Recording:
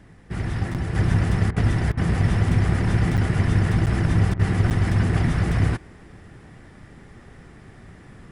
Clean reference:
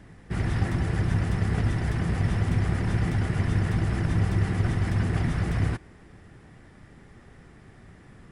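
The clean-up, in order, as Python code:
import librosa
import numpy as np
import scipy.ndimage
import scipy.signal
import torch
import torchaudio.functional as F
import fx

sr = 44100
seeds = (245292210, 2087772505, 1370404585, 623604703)

y = fx.fix_interpolate(x, sr, at_s=(0.74, 3.17, 3.86, 4.37, 4.7), length_ms=8.2)
y = fx.fix_interpolate(y, sr, at_s=(1.51, 1.92, 4.34), length_ms=52.0)
y = fx.fix_level(y, sr, at_s=0.95, step_db=-5.0)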